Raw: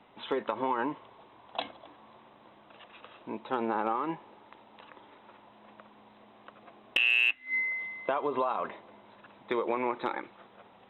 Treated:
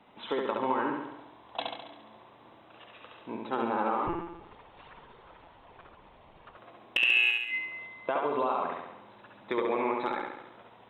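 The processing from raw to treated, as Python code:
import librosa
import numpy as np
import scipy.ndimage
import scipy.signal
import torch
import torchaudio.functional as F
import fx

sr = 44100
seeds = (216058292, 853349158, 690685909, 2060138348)

y = fx.echo_feedback(x, sr, ms=69, feedback_pct=57, wet_db=-3.0)
y = fx.lpc_monotone(y, sr, seeds[0], pitch_hz=170.0, order=16, at=(4.07, 6.57))
y = y * librosa.db_to_amplitude(-1.0)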